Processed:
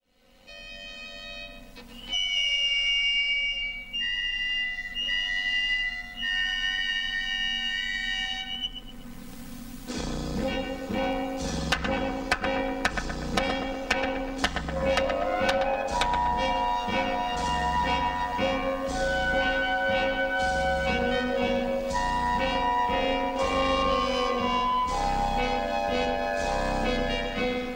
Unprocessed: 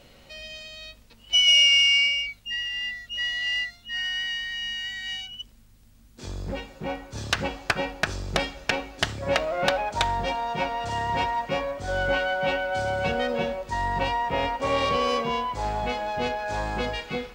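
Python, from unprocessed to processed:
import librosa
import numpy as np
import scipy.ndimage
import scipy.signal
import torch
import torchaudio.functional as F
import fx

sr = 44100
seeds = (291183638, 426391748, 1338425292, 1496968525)

p1 = fx.fade_in_head(x, sr, length_s=4.12)
p2 = p1 + fx.echo_filtered(p1, sr, ms=76, feedback_pct=51, hz=1700.0, wet_db=-4, dry=0)
p3 = fx.stretch_grains(p2, sr, factor=1.6, grain_ms=21.0)
y = fx.band_squash(p3, sr, depth_pct=70)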